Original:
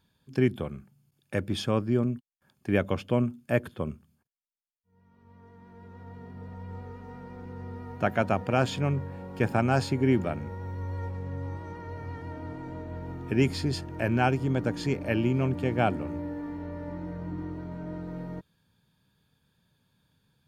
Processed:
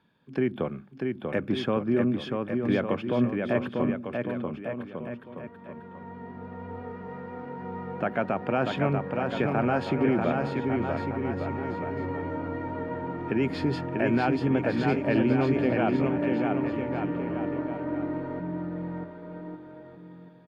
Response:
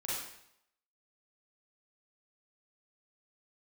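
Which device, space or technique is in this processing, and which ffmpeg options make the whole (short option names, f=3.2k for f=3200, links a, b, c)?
DJ mixer with the lows and highs turned down: -filter_complex "[0:a]acrossover=split=150 3100:gain=0.141 1 0.0794[a][b][c];[a][b][c]amix=inputs=3:normalize=0,alimiter=limit=-22dB:level=0:latency=1:release=131,aecho=1:1:640|1152|1562|1889|2151:0.631|0.398|0.251|0.158|0.1,volume=6dB"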